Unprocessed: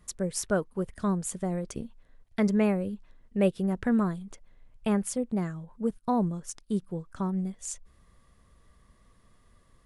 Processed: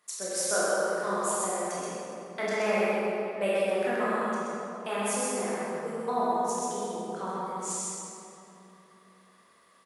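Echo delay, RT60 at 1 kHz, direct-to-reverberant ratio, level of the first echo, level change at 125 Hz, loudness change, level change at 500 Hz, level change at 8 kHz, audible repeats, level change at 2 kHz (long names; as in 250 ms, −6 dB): 128 ms, 2.8 s, −10.5 dB, −2.0 dB, −11.5 dB, 0.0 dB, +4.0 dB, +6.0 dB, 1, +8.0 dB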